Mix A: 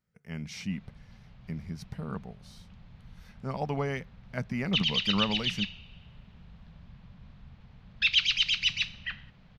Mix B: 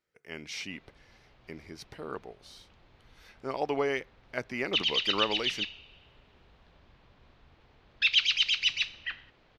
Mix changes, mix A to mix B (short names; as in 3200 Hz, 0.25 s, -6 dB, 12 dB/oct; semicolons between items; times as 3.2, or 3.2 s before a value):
speech: add bell 3000 Hz +5.5 dB 1.8 oct; master: add resonant low shelf 250 Hz -9.5 dB, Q 3